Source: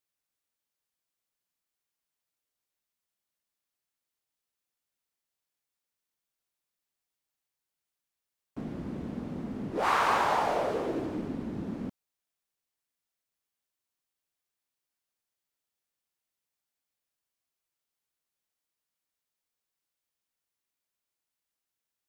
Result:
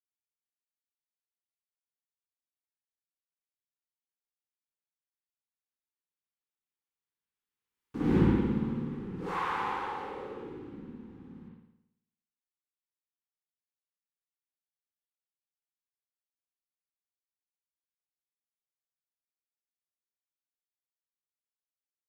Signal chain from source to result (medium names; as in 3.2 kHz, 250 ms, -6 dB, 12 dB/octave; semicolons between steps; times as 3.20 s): Doppler pass-by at 8.15 s, 25 m/s, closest 2.3 m; Butterworth band-stop 640 Hz, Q 2.4; reverberation RT60 0.80 s, pre-delay 55 ms, DRR -8 dB; trim +8 dB